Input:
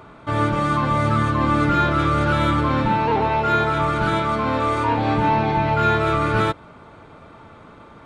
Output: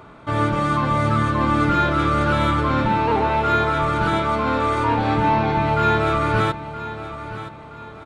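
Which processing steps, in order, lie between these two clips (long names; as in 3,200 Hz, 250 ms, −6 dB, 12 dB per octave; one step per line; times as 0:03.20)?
repeating echo 970 ms, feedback 38%, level −13 dB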